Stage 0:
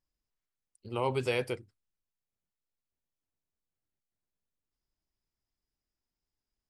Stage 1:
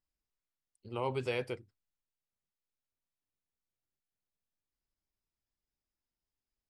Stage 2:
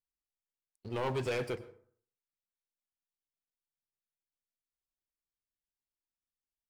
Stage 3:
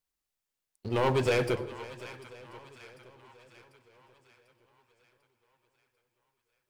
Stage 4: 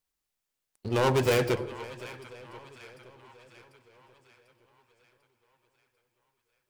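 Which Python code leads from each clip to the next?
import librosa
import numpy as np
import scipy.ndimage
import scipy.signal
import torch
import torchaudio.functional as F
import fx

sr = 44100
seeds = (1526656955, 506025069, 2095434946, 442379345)

y1 = fx.high_shelf(x, sr, hz=9500.0, db=-11.5)
y1 = y1 * librosa.db_to_amplitude(-4.0)
y2 = fx.leveller(y1, sr, passes=3)
y2 = fx.rev_plate(y2, sr, seeds[0], rt60_s=0.54, hf_ratio=0.55, predelay_ms=90, drr_db=16.5)
y2 = y2 * librosa.db_to_amplitude(-5.5)
y3 = fx.echo_split(y2, sr, split_hz=820.0, low_ms=110, high_ms=745, feedback_pct=52, wet_db=-14.5)
y3 = fx.echo_warbled(y3, sr, ms=518, feedback_pct=59, rate_hz=2.8, cents=113, wet_db=-18.5)
y3 = y3 * librosa.db_to_amplitude(7.5)
y4 = fx.tracing_dist(y3, sr, depth_ms=0.22)
y4 = y4 * librosa.db_to_amplitude(2.0)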